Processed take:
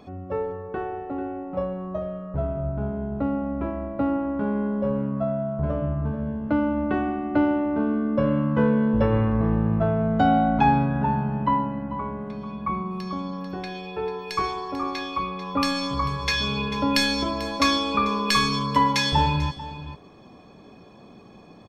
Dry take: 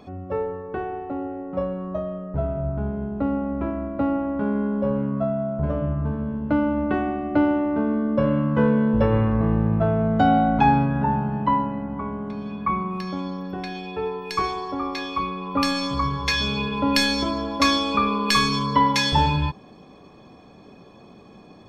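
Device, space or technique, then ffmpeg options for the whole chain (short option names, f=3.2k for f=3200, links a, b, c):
ducked delay: -filter_complex "[0:a]asettb=1/sr,asplit=3[a][b][c];[a]atrim=end=12.374[d];[b]atrim=start=12.37:end=13.33,asetpts=PTS-STARTPTS,afade=t=in:d=0.004:c=qsin,afade=t=out:st=0.956:d=0.004:c=qsin,equalizer=f=1.8k:t=o:w=1.3:g=-5.5[e];[c]atrim=start=13.326[f];[d][e]acrossfade=d=0.004:c1=hsin:c2=qsin[g];[g][f]acrossfade=d=0.004:c1=qsin:c2=hsin,asplit=3[h][i][j];[i]adelay=442,volume=-7dB[k];[j]apad=whole_len=975656[l];[k][l]sidechaincompress=threshold=-28dB:ratio=8:attack=29:release=1020[m];[h][m]amix=inputs=2:normalize=0,volume=-1.5dB"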